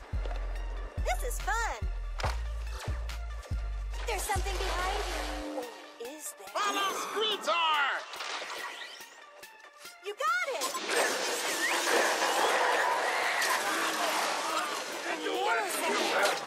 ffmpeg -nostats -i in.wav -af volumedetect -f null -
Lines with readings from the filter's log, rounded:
mean_volume: -31.8 dB
max_volume: -14.7 dB